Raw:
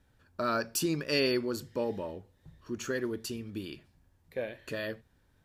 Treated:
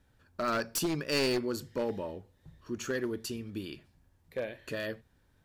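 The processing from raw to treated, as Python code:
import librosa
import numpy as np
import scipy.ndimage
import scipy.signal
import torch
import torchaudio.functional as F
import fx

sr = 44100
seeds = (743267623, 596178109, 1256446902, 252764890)

y = np.minimum(x, 2.0 * 10.0 ** (-26.0 / 20.0) - x)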